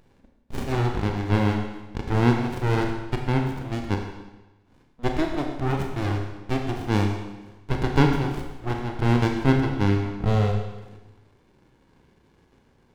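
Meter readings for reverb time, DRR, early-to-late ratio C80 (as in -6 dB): 1.1 s, 2.5 dB, 6.5 dB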